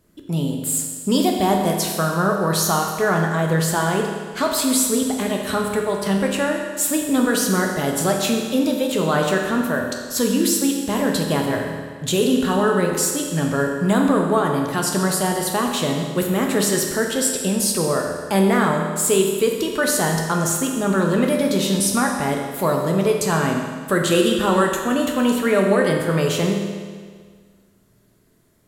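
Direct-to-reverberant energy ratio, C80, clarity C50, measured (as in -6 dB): 1.0 dB, 4.5 dB, 3.0 dB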